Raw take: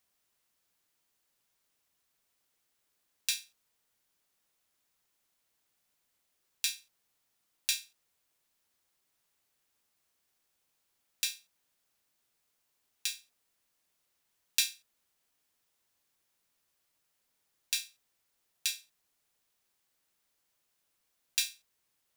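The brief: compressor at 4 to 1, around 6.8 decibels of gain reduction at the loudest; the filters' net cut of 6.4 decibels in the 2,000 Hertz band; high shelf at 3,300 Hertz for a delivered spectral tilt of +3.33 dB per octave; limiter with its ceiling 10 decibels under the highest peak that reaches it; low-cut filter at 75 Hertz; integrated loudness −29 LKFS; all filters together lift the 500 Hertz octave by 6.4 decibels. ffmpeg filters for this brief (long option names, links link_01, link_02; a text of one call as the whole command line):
ffmpeg -i in.wav -af "highpass=75,equalizer=frequency=500:width_type=o:gain=8,equalizer=frequency=2000:width_type=o:gain=-8,highshelf=frequency=3300:gain=-3.5,acompressor=threshold=-36dB:ratio=4,volume=19.5dB,alimiter=limit=-2dB:level=0:latency=1" out.wav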